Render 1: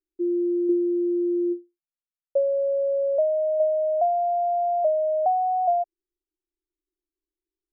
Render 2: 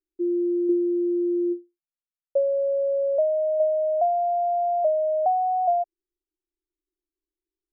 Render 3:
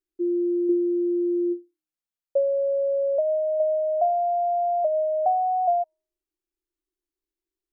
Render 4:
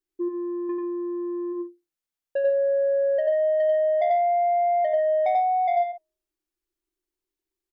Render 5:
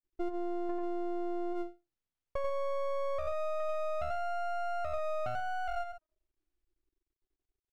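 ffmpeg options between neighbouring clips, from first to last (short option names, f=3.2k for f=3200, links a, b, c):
-af anull
-af "bandreject=f=313.3:t=h:w=4,bandreject=f=626.6:t=h:w=4,bandreject=f=939.9:t=h:w=4,bandreject=f=1.2532k:t=h:w=4,bandreject=f=1.5665k:t=h:w=4"
-filter_complex "[0:a]asoftclip=type=tanh:threshold=-20.5dB,asplit=2[a][b];[b]aecho=0:1:90.38|139.9:0.794|0.251[c];[a][c]amix=inputs=2:normalize=0"
-filter_complex "[0:a]aemphasis=mode=reproduction:type=bsi,acrossover=split=370|2500[a][b][c];[a]acompressor=threshold=-35dB:ratio=4[d];[b]acompressor=threshold=-32dB:ratio=4[e];[c]acompressor=threshold=-58dB:ratio=4[f];[d][e][f]amix=inputs=3:normalize=0,aeval=exprs='max(val(0),0)':c=same,volume=-1.5dB"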